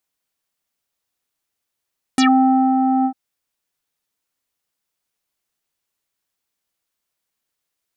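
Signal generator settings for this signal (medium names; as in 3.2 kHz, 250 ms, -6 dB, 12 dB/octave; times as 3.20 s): synth note square C4 24 dB/octave, low-pass 950 Hz, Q 4.8, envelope 3.5 oct, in 0.11 s, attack 1.7 ms, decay 0.57 s, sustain -4.5 dB, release 0.08 s, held 0.87 s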